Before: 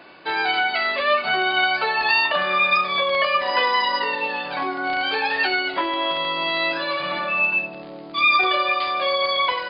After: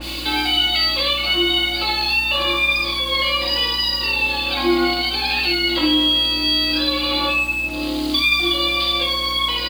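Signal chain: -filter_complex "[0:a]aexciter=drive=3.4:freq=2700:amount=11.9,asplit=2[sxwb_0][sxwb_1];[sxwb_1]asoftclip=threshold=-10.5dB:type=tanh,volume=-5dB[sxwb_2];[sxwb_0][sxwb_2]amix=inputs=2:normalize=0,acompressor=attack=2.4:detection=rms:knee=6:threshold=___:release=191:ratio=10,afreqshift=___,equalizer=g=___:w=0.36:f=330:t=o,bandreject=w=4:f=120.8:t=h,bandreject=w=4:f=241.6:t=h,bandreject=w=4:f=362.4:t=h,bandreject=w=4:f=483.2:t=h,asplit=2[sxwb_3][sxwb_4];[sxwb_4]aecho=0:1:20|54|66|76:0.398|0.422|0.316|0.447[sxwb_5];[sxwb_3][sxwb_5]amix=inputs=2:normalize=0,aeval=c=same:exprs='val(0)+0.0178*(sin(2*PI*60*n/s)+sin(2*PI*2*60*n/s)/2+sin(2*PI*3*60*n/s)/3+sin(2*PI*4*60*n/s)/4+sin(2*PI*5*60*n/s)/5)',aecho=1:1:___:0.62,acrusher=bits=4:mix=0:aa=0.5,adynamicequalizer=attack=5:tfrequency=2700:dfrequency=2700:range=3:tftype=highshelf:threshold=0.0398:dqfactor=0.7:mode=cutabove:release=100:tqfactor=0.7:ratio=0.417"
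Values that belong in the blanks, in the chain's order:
-16dB, -27, 14.5, 3.7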